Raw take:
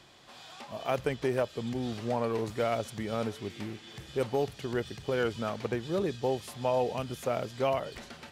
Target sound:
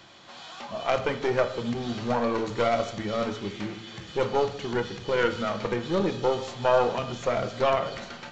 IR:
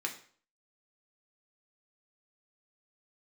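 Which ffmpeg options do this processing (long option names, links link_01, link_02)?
-filter_complex "[0:a]aeval=exprs='0.188*(cos(1*acos(clip(val(0)/0.188,-1,1)))-cos(1*PI/2))+0.0335*(cos(4*acos(clip(val(0)/0.188,-1,1)))-cos(4*PI/2))':channel_layout=same,asplit=2[link_01][link_02];[1:a]atrim=start_sample=2205,asetrate=27342,aresample=44100[link_03];[link_02][link_03]afir=irnorm=-1:irlink=0,volume=-3.5dB[link_04];[link_01][link_04]amix=inputs=2:normalize=0,aresample=16000,aresample=44100"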